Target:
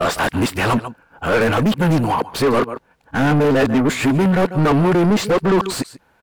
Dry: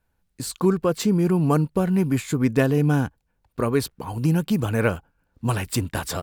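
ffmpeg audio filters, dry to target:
ffmpeg -i in.wav -filter_complex "[0:a]areverse,aecho=1:1:143:0.0708,asplit=2[link_01][link_02];[link_02]highpass=frequency=720:poles=1,volume=31dB,asoftclip=type=tanh:threshold=-7.5dB[link_03];[link_01][link_03]amix=inputs=2:normalize=0,lowpass=frequency=1600:poles=1,volume=-6dB" out.wav

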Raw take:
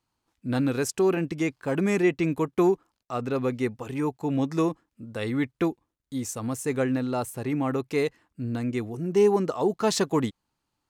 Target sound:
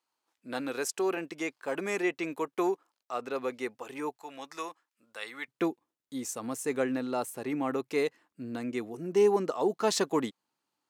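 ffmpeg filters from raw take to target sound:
ffmpeg -i in.wav -af "asetnsamples=nb_out_samples=441:pad=0,asendcmd='4.16 highpass f 980;5.48 highpass f 260',highpass=450,volume=-2.5dB" out.wav

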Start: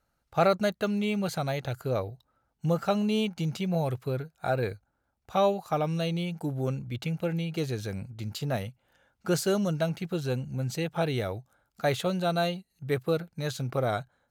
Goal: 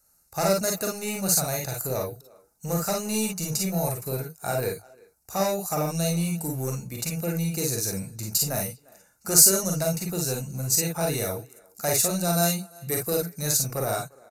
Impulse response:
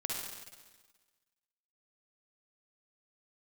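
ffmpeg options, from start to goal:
-filter_complex "[0:a]asettb=1/sr,asplit=3[link_01][link_02][link_03];[link_01]atrim=end=12.284[link_04];[link_02]atrim=start=12.28:end=13.42,asetpts=PTS-STARTPTS,afade=type=in:duration=0.004:curve=qsin,afade=type=out:start_time=1.136:duration=0.004:curve=qsin,bass=frequency=250:gain=0,treble=frequency=4000:gain=3[link_05];[link_03]atrim=start=13.416[link_06];[link_04][link_05]acrossfade=duration=0.004:curve1=hsin:curve2=qsin[link_07];[link_07][link_06]acrossfade=duration=0.004:curve1=qsin:curve2=hsin,asplit=2[link_08][link_09];[link_09]adelay=350,highpass=300,lowpass=3400,asoftclip=type=hard:threshold=-20.5dB,volume=-25dB[link_10];[link_08][link_10]amix=inputs=2:normalize=0,aeval=exprs='0.299*(cos(1*acos(clip(val(0)/0.299,-1,1)))-cos(1*PI/2))+0.0531*(cos(5*acos(clip(val(0)/0.299,-1,1)))-cos(5*PI/2))':channel_layout=same,acrossover=split=400[link_11][link_12];[link_11]volume=24.5dB,asoftclip=hard,volume=-24.5dB[link_13];[link_13][link_12]amix=inputs=2:normalize=0,asuperstop=centerf=3200:order=8:qfactor=5.8[link_14];[1:a]atrim=start_sample=2205,afade=type=out:start_time=0.13:duration=0.01,atrim=end_sample=6174,asetrate=57330,aresample=44100[link_15];[link_14][link_15]afir=irnorm=-1:irlink=0,aresample=32000,aresample=44100,aexciter=amount=12.5:drive=2.5:freq=5100,volume=-1.5dB"

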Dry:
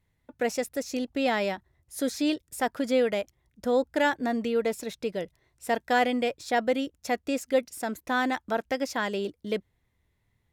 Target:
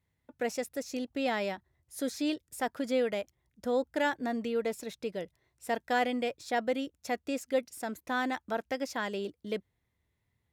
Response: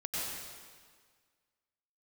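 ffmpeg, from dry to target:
-af "highpass=50,volume=-5dB"

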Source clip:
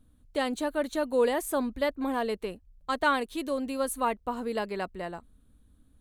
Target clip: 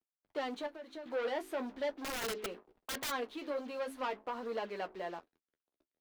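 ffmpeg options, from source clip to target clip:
ffmpeg -i in.wav -filter_complex "[0:a]acrusher=bits=6:mode=log:mix=0:aa=0.000001,equalizer=frequency=7300:width_type=o:width=1.3:gain=-6,bandreject=frequency=53.59:width_type=h:width=4,bandreject=frequency=107.18:width_type=h:width=4,bandreject=frequency=160.77:width_type=h:width=4,bandreject=frequency=214.36:width_type=h:width=4,bandreject=frequency=267.95:width_type=h:width=4,bandreject=frequency=321.54:width_type=h:width=4,bandreject=frequency=375.13:width_type=h:width=4,bandreject=frequency=428.72:width_type=h:width=4,acrusher=bits=7:mix=0:aa=0.5,asoftclip=type=tanh:threshold=-29.5dB,acrossover=split=270 5300:gain=0.126 1 0.141[link_01][link_02][link_03];[link_01][link_02][link_03]amix=inputs=3:normalize=0,asettb=1/sr,asplit=3[link_04][link_05][link_06];[link_04]atrim=end=0.664[link_07];[link_05]atrim=start=0.66:end=1.06,asetpts=PTS-STARTPTS,afade=type=in:duration=0.004:curve=qsin,afade=type=out:start_time=0.396:duration=0.004:curve=qsin,acompressor=threshold=-42dB:ratio=12[link_08];[link_06]atrim=start=1.056[link_09];[link_07][link_08]acrossfade=duration=0.004:curve1=hsin:curve2=qsin[link_10];[link_10][link_09]acrossfade=duration=0.004:curve1=qsin:curve2=hsin,flanger=delay=8.6:depth=5.2:regen=-39:speed=0.43:shape=triangular,asplit=3[link_11][link_12][link_13];[link_11]afade=type=out:start_time=2.01:duration=0.02[link_14];[link_12]aeval=exprs='(mod(53.1*val(0)+1,2)-1)/53.1':channel_layout=same,afade=type=in:start_time=2.01:duration=0.02,afade=type=out:start_time=3.1:duration=0.02[link_15];[link_13]afade=type=in:start_time=3.1:duration=0.02[link_16];[link_14][link_15][link_16]amix=inputs=3:normalize=0,volume=2dB" out.wav

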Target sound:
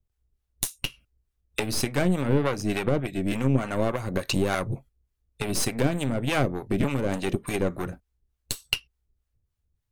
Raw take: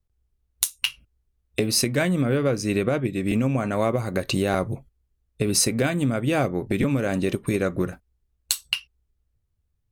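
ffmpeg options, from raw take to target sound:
ffmpeg -i in.wav -filter_complex "[0:a]aeval=exprs='0.596*(cos(1*acos(clip(val(0)/0.596,-1,1)))-cos(1*PI/2))+0.0596*(cos(8*acos(clip(val(0)/0.596,-1,1)))-cos(8*PI/2))':channel_layout=same,acrossover=split=660[link_01][link_02];[link_01]aeval=exprs='val(0)*(1-0.7/2+0.7/2*cos(2*PI*3.4*n/s))':channel_layout=same[link_03];[link_02]aeval=exprs='val(0)*(1-0.7/2-0.7/2*cos(2*PI*3.4*n/s))':channel_layout=same[link_04];[link_03][link_04]amix=inputs=2:normalize=0,volume=1dB" out.wav

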